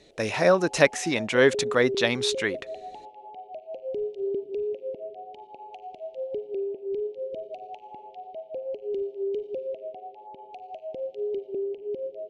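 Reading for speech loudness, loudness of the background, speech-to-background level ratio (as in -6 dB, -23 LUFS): -23.0 LUFS, -34.5 LUFS, 11.5 dB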